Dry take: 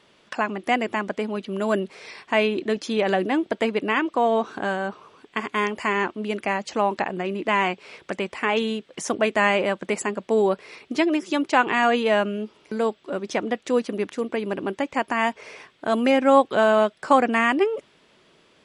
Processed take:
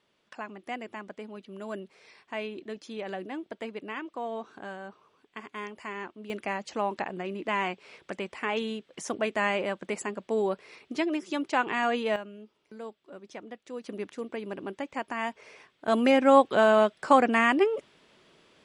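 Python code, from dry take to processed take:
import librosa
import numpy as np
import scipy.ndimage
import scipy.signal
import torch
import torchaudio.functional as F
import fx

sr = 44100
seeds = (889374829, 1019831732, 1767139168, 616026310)

y = fx.gain(x, sr, db=fx.steps((0.0, -14.5), (6.3, -7.5), (12.16, -17.5), (13.84, -9.5), (15.88, -2.5)))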